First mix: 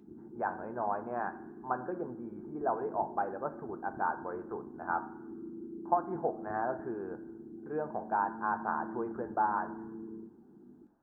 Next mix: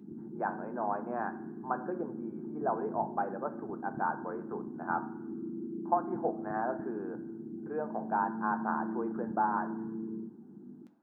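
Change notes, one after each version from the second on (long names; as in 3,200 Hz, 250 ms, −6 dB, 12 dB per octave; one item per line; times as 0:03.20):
background: remove high-pass filter 350 Hz 12 dB per octave
master: add high-pass filter 180 Hz 24 dB per octave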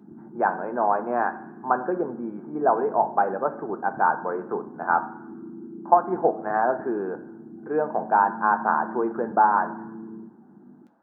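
speech +11.5 dB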